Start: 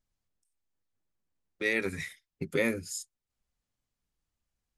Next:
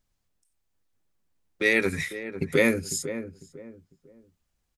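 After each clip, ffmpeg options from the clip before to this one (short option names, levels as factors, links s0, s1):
-filter_complex "[0:a]asplit=2[s0][s1];[s1]adelay=500,lowpass=f=990:p=1,volume=0.316,asplit=2[s2][s3];[s3]adelay=500,lowpass=f=990:p=1,volume=0.31,asplit=2[s4][s5];[s5]adelay=500,lowpass=f=990:p=1,volume=0.31[s6];[s0][s2][s4][s6]amix=inputs=4:normalize=0,volume=2.24"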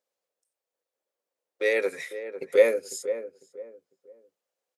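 -af "highpass=f=510:t=q:w=5.3,volume=0.473"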